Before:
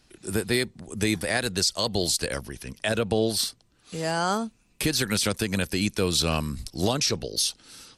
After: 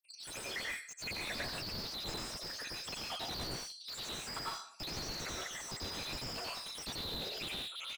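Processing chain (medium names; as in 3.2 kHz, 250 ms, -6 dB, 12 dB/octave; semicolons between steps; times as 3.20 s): random holes in the spectrogram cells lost 82%; tilt shelf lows -4 dB, about 870 Hz; comb 4.5 ms, depth 92%; dynamic bell 3.1 kHz, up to -7 dB, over -41 dBFS, Q 2.2; compression 10:1, threshold -30 dBFS, peak gain reduction 11.5 dB; LFO high-pass square 9.8 Hz 570–4100 Hz; whisper effect; band-pass sweep 5 kHz -> 2 kHz, 6.68–7.87 s; plate-style reverb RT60 0.61 s, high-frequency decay 0.6×, pre-delay 80 ms, DRR -4 dB; slew-rate limiter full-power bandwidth 10 Hz; trim +10.5 dB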